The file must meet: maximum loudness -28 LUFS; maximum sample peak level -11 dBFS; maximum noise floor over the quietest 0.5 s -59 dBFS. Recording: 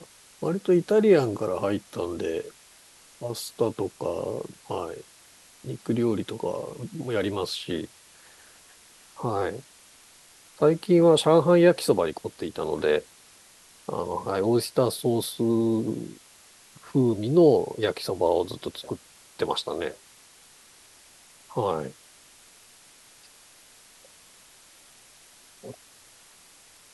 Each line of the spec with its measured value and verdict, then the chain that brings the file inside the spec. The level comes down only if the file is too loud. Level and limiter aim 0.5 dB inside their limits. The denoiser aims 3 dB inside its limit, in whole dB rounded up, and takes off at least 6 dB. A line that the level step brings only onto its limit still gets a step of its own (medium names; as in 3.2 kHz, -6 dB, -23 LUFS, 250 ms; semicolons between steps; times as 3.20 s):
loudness -25.5 LUFS: fail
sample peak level -7.0 dBFS: fail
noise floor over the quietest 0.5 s -54 dBFS: fail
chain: noise reduction 6 dB, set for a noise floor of -54 dBFS; trim -3 dB; peak limiter -11.5 dBFS